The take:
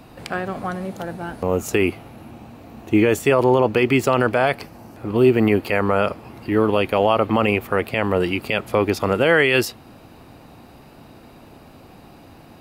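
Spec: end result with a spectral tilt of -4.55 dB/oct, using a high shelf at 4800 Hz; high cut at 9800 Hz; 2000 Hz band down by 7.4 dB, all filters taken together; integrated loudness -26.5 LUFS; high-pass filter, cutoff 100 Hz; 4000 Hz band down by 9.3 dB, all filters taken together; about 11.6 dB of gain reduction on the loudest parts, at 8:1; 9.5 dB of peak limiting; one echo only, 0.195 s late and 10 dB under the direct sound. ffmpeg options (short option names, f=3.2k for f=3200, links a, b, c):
-af "highpass=100,lowpass=9.8k,equalizer=f=2k:t=o:g=-6.5,equalizer=f=4k:t=o:g=-7.5,highshelf=f=4.8k:g=-6.5,acompressor=threshold=-23dB:ratio=8,alimiter=limit=-19dB:level=0:latency=1,aecho=1:1:195:0.316,volume=4dB"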